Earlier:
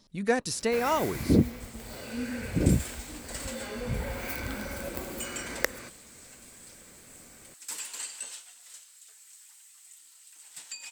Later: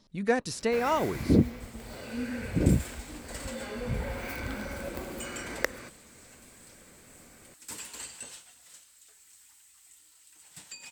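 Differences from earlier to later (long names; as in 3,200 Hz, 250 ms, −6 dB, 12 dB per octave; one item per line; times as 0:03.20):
second sound: remove meter weighting curve A
master: add high-shelf EQ 6,100 Hz −8.5 dB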